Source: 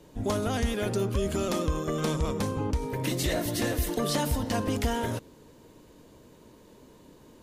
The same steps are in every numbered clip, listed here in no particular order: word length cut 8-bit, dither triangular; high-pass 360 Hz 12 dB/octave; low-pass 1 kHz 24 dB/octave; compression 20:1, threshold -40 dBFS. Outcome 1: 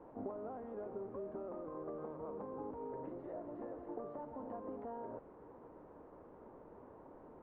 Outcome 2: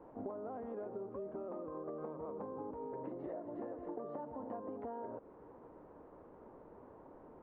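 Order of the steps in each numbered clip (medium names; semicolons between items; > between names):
high-pass > compression > word length cut > low-pass; high-pass > word length cut > low-pass > compression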